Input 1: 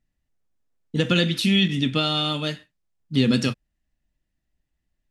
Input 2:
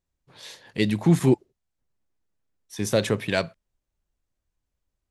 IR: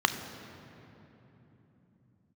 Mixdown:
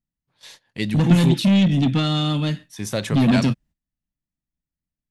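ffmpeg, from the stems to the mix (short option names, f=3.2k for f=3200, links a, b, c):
-filter_complex "[0:a]equalizer=f=190:w=0.43:g=12,asoftclip=type=tanh:threshold=-10.5dB,volume=-1dB[a];[1:a]volume=-0.5dB[b];[a][b]amix=inputs=2:normalize=0,agate=range=-16dB:threshold=-45dB:ratio=16:detection=peak,equalizer=f=430:w=1.7:g=-6.5"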